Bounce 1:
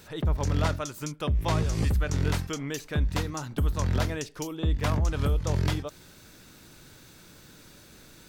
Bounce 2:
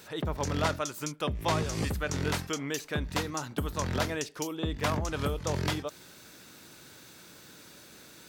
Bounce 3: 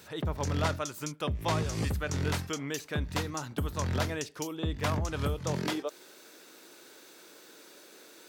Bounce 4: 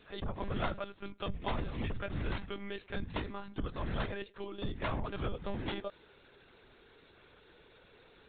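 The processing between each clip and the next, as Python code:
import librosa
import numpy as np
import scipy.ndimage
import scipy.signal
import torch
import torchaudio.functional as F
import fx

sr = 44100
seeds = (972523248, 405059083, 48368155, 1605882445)

y1 = fx.highpass(x, sr, hz=250.0, slope=6)
y1 = y1 * 10.0 ** (1.5 / 20.0)
y2 = fx.filter_sweep_highpass(y1, sr, from_hz=73.0, to_hz=380.0, start_s=5.31, end_s=5.83, q=1.8)
y2 = y2 * 10.0 ** (-2.0 / 20.0)
y3 = fx.lpc_monotone(y2, sr, seeds[0], pitch_hz=200.0, order=16)
y3 = y3 * 10.0 ** (-5.0 / 20.0)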